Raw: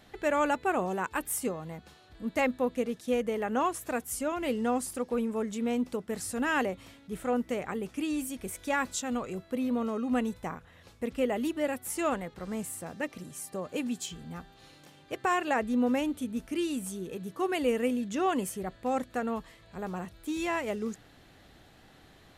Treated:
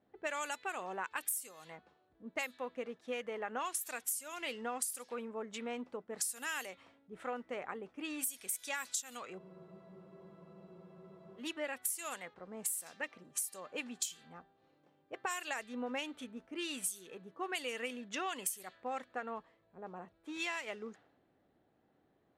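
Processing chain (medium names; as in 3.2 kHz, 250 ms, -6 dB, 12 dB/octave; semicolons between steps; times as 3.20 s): differentiator; level-controlled noise filter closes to 330 Hz, open at -38 dBFS; compression 16:1, threshold -50 dBFS, peak gain reduction 23 dB; spectral freeze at 9.40 s, 2.00 s; trim +15.5 dB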